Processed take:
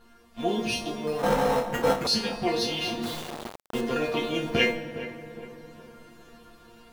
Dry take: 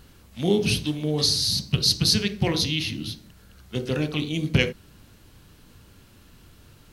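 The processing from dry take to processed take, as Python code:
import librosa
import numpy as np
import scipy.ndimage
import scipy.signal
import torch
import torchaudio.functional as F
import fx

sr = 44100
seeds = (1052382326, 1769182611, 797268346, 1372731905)

p1 = fx.high_shelf(x, sr, hz=9500.0, db=-4.0)
p2 = fx.schmitt(p1, sr, flips_db=-33.5)
p3 = p1 + F.gain(torch.from_numpy(p2), -10.5).numpy()
p4 = fx.resonator_bank(p3, sr, root=58, chord='fifth', decay_s=0.3)
p5 = fx.rev_fdn(p4, sr, rt60_s=3.6, lf_ratio=1.0, hf_ratio=0.55, size_ms=10.0, drr_db=10.0)
p6 = fx.sample_hold(p5, sr, seeds[0], rate_hz=4700.0, jitter_pct=0, at=(1.07, 2.07))
p7 = p6 + fx.echo_tape(p6, sr, ms=411, feedback_pct=52, wet_db=-10.0, lp_hz=1200.0, drive_db=28.0, wow_cents=13, dry=0)
p8 = fx.rider(p7, sr, range_db=4, speed_s=2.0)
p9 = fx.quant_dither(p8, sr, seeds[1], bits=8, dither='none', at=(3.02, 3.8), fade=0.02)
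p10 = fx.peak_eq(p9, sr, hz=740.0, db=10.5, octaves=2.6)
y = F.gain(torch.from_numpy(p10), 8.5).numpy()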